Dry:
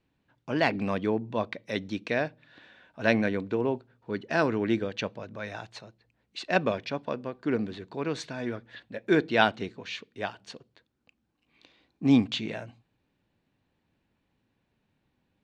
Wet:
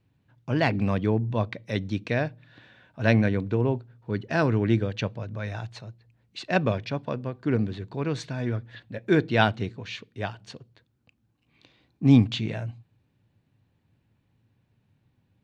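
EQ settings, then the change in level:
parametric band 110 Hz +14.5 dB 1.1 octaves
0.0 dB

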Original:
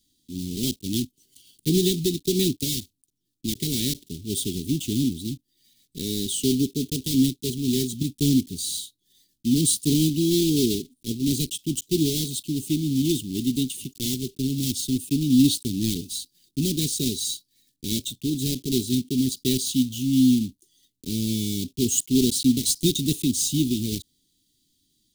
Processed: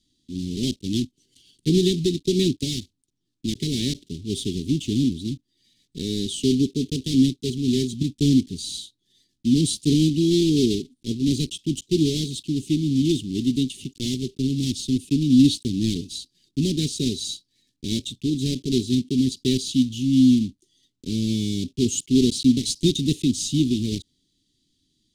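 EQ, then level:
high-frequency loss of the air 77 metres
+2.5 dB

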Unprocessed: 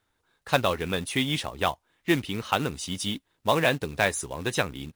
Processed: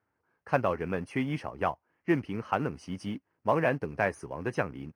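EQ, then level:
moving average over 12 samples
high-pass filter 90 Hz
−2.0 dB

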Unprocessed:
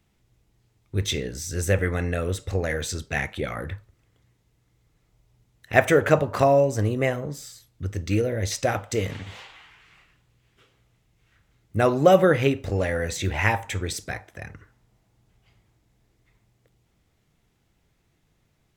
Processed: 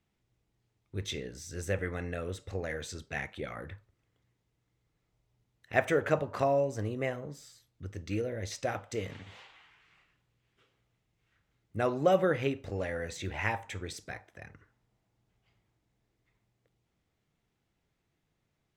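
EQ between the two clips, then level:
low-shelf EQ 96 Hz −6.5 dB
high-shelf EQ 8,800 Hz −9.5 dB
−9.0 dB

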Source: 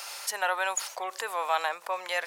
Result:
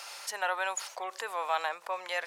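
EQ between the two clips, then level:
high-shelf EQ 11,000 Hz −10 dB
−3.0 dB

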